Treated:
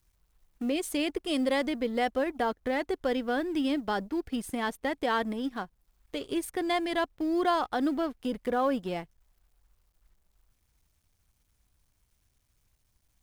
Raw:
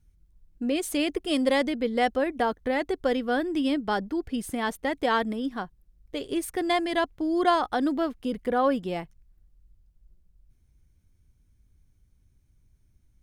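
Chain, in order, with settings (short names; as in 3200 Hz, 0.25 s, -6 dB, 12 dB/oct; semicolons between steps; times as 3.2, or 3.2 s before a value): G.711 law mismatch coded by A; in parallel at +2 dB: limiter -19 dBFS, peak gain reduction 8 dB; on the sum: mismatched tape noise reduction encoder only; gain -8.5 dB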